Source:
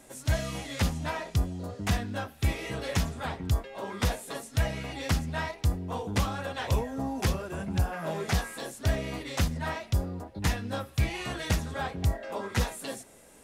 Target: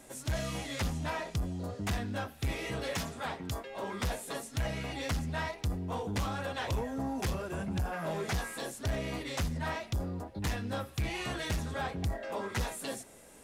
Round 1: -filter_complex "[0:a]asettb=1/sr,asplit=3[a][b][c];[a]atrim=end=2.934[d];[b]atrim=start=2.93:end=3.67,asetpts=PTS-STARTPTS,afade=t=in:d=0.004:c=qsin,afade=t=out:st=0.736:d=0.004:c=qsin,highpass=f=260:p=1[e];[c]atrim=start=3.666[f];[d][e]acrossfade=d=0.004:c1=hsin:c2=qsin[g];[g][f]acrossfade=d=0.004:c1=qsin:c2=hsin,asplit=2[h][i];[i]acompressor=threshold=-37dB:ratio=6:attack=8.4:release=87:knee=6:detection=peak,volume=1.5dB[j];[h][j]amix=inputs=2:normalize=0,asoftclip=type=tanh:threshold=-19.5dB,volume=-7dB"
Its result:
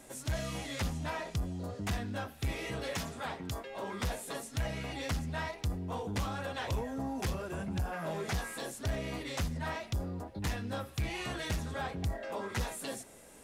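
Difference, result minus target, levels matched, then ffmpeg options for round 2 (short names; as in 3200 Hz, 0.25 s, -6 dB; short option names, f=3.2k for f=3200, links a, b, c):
compressor: peak gain reduction +8 dB
-filter_complex "[0:a]asettb=1/sr,asplit=3[a][b][c];[a]atrim=end=2.934[d];[b]atrim=start=2.93:end=3.67,asetpts=PTS-STARTPTS,afade=t=in:d=0.004:c=qsin,afade=t=out:st=0.736:d=0.004:c=qsin,highpass=f=260:p=1[e];[c]atrim=start=3.666[f];[d][e]acrossfade=d=0.004:c1=hsin:c2=qsin[g];[g][f]acrossfade=d=0.004:c1=qsin:c2=hsin,asplit=2[h][i];[i]acompressor=threshold=-27.5dB:ratio=6:attack=8.4:release=87:knee=6:detection=peak,volume=1.5dB[j];[h][j]amix=inputs=2:normalize=0,asoftclip=type=tanh:threshold=-19.5dB,volume=-7dB"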